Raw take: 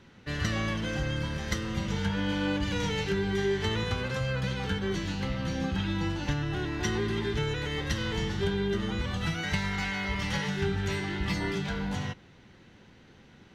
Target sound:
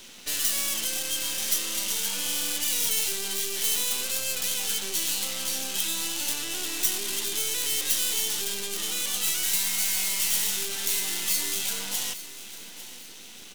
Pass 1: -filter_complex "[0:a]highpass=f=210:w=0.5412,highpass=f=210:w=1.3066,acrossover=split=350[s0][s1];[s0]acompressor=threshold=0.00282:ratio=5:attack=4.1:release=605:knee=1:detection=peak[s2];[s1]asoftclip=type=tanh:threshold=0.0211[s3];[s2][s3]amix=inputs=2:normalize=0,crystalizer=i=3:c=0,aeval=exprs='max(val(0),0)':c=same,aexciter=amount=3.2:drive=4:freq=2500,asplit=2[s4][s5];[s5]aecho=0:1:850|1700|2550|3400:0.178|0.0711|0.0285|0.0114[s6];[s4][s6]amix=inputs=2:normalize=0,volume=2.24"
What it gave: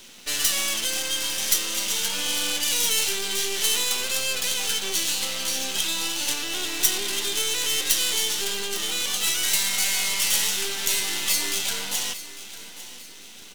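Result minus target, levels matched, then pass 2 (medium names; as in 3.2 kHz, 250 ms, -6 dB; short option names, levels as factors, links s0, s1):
saturation: distortion -6 dB
-filter_complex "[0:a]highpass=f=210:w=0.5412,highpass=f=210:w=1.3066,acrossover=split=350[s0][s1];[s0]acompressor=threshold=0.00282:ratio=5:attack=4.1:release=605:knee=1:detection=peak[s2];[s1]asoftclip=type=tanh:threshold=0.0075[s3];[s2][s3]amix=inputs=2:normalize=0,crystalizer=i=3:c=0,aeval=exprs='max(val(0),0)':c=same,aexciter=amount=3.2:drive=4:freq=2500,asplit=2[s4][s5];[s5]aecho=0:1:850|1700|2550|3400:0.178|0.0711|0.0285|0.0114[s6];[s4][s6]amix=inputs=2:normalize=0,volume=2.24"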